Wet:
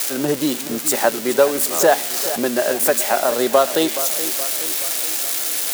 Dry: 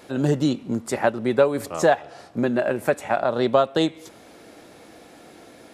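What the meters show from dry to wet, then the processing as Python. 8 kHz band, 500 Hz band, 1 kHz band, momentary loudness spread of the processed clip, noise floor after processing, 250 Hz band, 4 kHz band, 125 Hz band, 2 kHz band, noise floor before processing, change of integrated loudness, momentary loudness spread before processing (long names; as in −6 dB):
+20.5 dB, +3.5 dB, +4.0 dB, 4 LU, −27 dBFS, +0.5 dB, +11.0 dB, −8.0 dB, +5.0 dB, −48 dBFS, +4.5 dB, 6 LU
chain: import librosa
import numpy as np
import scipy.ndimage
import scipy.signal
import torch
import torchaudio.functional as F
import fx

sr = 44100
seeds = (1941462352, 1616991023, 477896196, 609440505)

y = x + 0.5 * 10.0 ** (-15.5 / 20.0) * np.diff(np.sign(x), prepend=np.sign(x[:1]))
y = scipy.signal.sosfilt(scipy.signal.butter(2, 280.0, 'highpass', fs=sr, output='sos'), y)
y = fx.echo_feedback(y, sr, ms=423, feedback_pct=54, wet_db=-13.0)
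y = y * librosa.db_to_amplitude(3.5)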